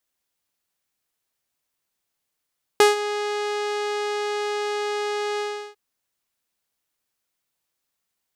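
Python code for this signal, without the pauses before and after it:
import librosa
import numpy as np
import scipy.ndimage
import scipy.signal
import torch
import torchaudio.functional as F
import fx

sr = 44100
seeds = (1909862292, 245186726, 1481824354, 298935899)

y = fx.sub_voice(sr, note=68, wave='saw', cutoff_hz=6100.0, q=0.8, env_oct=1.0, env_s=0.24, attack_ms=2.0, decay_s=0.15, sustain_db=-14, release_s=0.36, note_s=2.59, slope=12)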